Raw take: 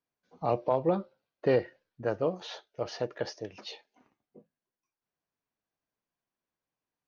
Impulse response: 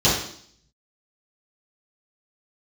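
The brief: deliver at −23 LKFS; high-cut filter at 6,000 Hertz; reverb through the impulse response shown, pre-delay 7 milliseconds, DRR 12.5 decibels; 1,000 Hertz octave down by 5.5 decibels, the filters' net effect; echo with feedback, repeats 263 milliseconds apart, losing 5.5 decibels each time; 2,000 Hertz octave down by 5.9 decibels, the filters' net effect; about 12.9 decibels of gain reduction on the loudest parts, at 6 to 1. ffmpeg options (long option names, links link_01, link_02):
-filter_complex "[0:a]lowpass=6000,equalizer=frequency=1000:width_type=o:gain=-7,equalizer=frequency=2000:width_type=o:gain=-5,acompressor=threshold=-36dB:ratio=6,aecho=1:1:263|526|789|1052|1315|1578|1841:0.531|0.281|0.149|0.079|0.0419|0.0222|0.0118,asplit=2[link_01][link_02];[1:a]atrim=start_sample=2205,adelay=7[link_03];[link_02][link_03]afir=irnorm=-1:irlink=0,volume=-31.5dB[link_04];[link_01][link_04]amix=inputs=2:normalize=0,volume=18.5dB"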